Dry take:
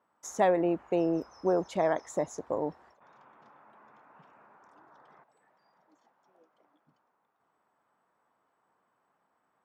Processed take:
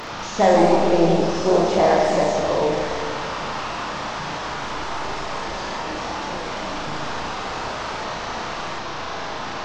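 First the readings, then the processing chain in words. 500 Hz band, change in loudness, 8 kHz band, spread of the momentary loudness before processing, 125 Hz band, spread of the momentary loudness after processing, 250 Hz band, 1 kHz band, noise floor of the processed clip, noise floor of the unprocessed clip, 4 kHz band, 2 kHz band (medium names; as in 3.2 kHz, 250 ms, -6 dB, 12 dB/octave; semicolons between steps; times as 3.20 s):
+12.0 dB, +7.5 dB, +13.0 dB, 9 LU, +15.0 dB, 11 LU, +11.0 dB, +15.0 dB, -30 dBFS, -76 dBFS, +26.0 dB, +18.0 dB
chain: one-bit delta coder 32 kbps, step -34.5 dBFS; bass shelf 130 Hz +5.5 dB; on a send: flutter echo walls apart 6.1 m, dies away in 0.49 s; on the sum: algorithmic reverb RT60 2.9 s, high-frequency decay 0.5×, pre-delay 5 ms, DRR 2.5 dB; ever faster or slower copies 194 ms, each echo +2 st, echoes 2, each echo -6 dB; trim +7 dB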